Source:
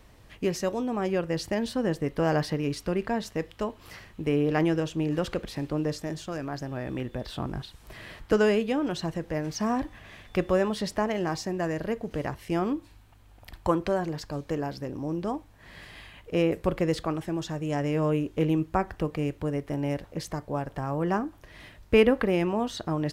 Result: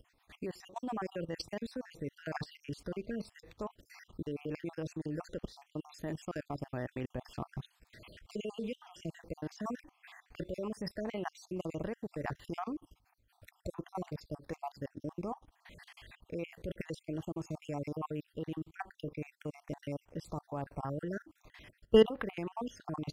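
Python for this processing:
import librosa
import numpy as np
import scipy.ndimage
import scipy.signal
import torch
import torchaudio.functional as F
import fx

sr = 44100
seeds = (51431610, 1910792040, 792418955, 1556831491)

y = fx.spec_dropout(x, sr, seeds[0], share_pct=55)
y = fx.level_steps(y, sr, step_db=18)
y = y * 10.0 ** (-1.0 / 20.0)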